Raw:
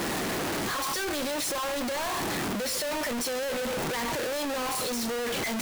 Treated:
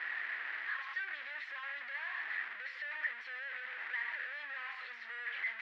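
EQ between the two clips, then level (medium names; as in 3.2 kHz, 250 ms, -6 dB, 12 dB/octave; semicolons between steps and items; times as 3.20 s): ladder band-pass 2 kHz, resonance 70%; distance through air 370 m; +4.5 dB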